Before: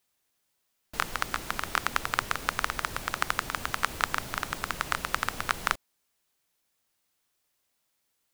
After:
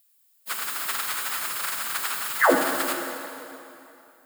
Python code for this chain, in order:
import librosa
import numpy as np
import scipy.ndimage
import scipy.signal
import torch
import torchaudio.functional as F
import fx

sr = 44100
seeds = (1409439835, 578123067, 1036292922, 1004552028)

y = scipy.signal.sosfilt(scipy.signal.butter(4, 110.0, 'highpass', fs=sr, output='sos'), x)
y = fx.riaa(y, sr, side='recording')
y = fx.notch(y, sr, hz=5900.0, q=5.6)
y = fx.spec_paint(y, sr, seeds[0], shape='fall', start_s=4.74, length_s=0.25, low_hz=220.0, high_hz=2200.0, level_db=-12.0)
y = fx.stretch_vocoder_free(y, sr, factor=0.51)
y = fx.rev_plate(y, sr, seeds[1], rt60_s=2.8, hf_ratio=0.8, predelay_ms=0, drr_db=2.5)